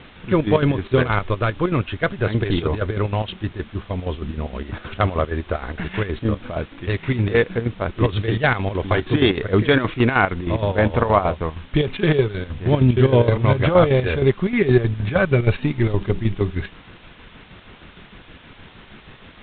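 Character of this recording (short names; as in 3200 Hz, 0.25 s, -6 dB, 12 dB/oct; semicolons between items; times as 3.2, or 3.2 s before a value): chopped level 6.4 Hz, depth 65%, duty 60%; a quantiser's noise floor 8-bit, dither triangular; G.726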